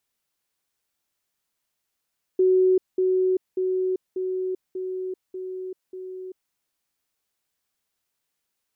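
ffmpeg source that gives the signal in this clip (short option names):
-f lavfi -i "aevalsrc='pow(10,(-15-3*floor(t/0.59))/20)*sin(2*PI*372*t)*clip(min(mod(t,0.59),0.39-mod(t,0.59))/0.005,0,1)':d=4.13:s=44100"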